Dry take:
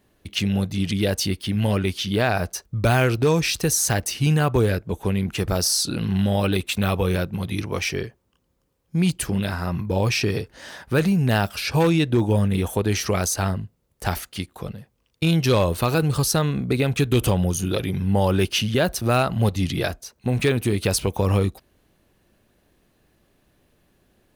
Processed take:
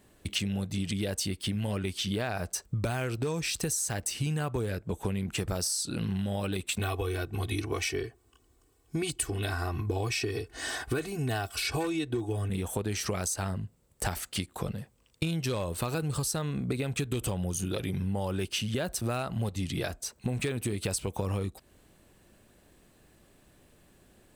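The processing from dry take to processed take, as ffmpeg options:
ffmpeg -i in.wav -filter_complex "[0:a]asettb=1/sr,asplit=3[link_01][link_02][link_03];[link_01]atrim=end=6.794[link_04];[link_02]atrim=start=6.79:end=12.5,asetpts=PTS-STARTPTS,afade=type=in:duration=0.004:curve=qsin,afade=type=out:start_time=5.706:duration=0.004:curve=qsin,aecho=1:1:2.7:0.91,atrim=end_sample=251811[link_05];[link_03]atrim=start=12.496[link_06];[link_04][link_05]acrossfade=duration=0.004:curve1=hsin:curve2=qsin[link_07];[link_07][link_06]acrossfade=duration=0.004:curve1=qsin:curve2=hsin,equalizer=frequency=8000:width_type=o:width=0.26:gain=11,acompressor=threshold=-30dB:ratio=12,volume=2dB" out.wav

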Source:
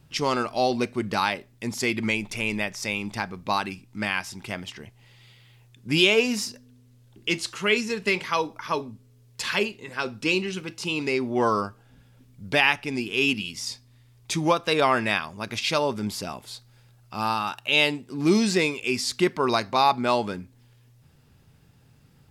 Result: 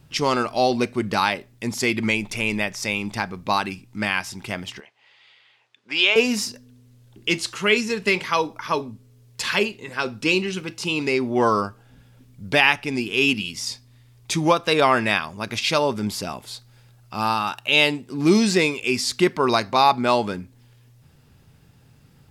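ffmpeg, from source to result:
ffmpeg -i in.wav -filter_complex "[0:a]asettb=1/sr,asplit=3[link_01][link_02][link_03];[link_01]atrim=end=4.804[link_04];[link_02]atrim=start=4.8:end=6.16,asetpts=PTS-STARTPTS,afade=type=in:duration=0.004:curve=qsin,afade=type=out:start_time=1.356:duration=0.004:curve=qsin,highpass=720,lowpass=3800[link_05];[link_03]atrim=start=6.156[link_06];[link_04][link_05]acrossfade=duration=0.004:curve1=hsin:curve2=qsin[link_07];[link_07][link_06]acrossfade=duration=0.004:curve1=qsin:curve2=hsin,deesser=0.4,volume=3.5dB" out.wav

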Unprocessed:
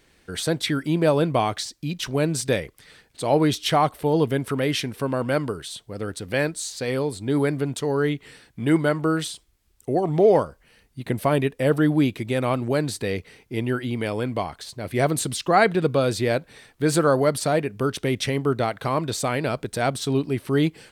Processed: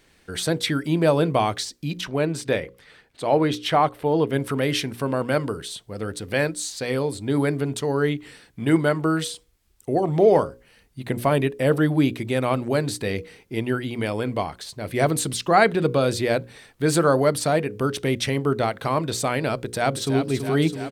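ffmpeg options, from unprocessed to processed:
ffmpeg -i in.wav -filter_complex "[0:a]asettb=1/sr,asplit=3[link_01][link_02][link_03];[link_01]atrim=end=2.014[link_04];[link_02]atrim=start=2.01:end=4.33,asetpts=PTS-STARTPTS,afade=type=in:duration=0.004:curve=qsin,afade=type=out:start_time=2.316:duration=0.004:curve=qsin,bass=frequency=250:gain=-4,treble=frequency=4000:gain=-9[link_05];[link_03]atrim=start=4.326[link_06];[link_04][link_05]acrossfade=duration=0.004:curve1=hsin:curve2=qsin[link_07];[link_07][link_06]acrossfade=duration=0.004:curve1=qsin:curve2=hsin,asplit=2[link_08][link_09];[link_09]afade=type=in:start_time=19.61:duration=0.01,afade=type=out:start_time=20.24:duration=0.01,aecho=0:1:330|660|990|1320|1650|1980|2310|2640|2970|3300|3630:0.398107|0.278675|0.195073|0.136551|0.0955855|0.0669099|0.0468369|0.0327858|0.0229501|0.0160651|0.0112455[link_10];[link_08][link_10]amix=inputs=2:normalize=0,bandreject=frequency=60:width_type=h:width=6,bandreject=frequency=120:width_type=h:width=6,bandreject=frequency=180:width_type=h:width=6,bandreject=frequency=240:width_type=h:width=6,bandreject=frequency=300:width_type=h:width=6,bandreject=frequency=360:width_type=h:width=6,bandreject=frequency=420:width_type=h:width=6,bandreject=frequency=480:width_type=h:width=6,bandreject=frequency=540:width_type=h:width=6,volume=1dB" out.wav

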